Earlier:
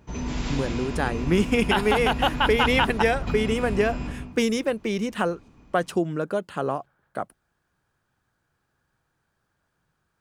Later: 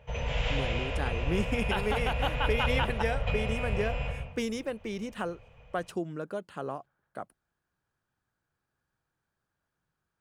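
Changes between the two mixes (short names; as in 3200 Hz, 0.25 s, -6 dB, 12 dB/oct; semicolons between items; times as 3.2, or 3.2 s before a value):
speech -9.5 dB; background: add EQ curve 130 Hz 0 dB, 330 Hz -28 dB, 490 Hz +9 dB, 1100 Hz -4 dB, 3000 Hz +7 dB, 4400 Hz -10 dB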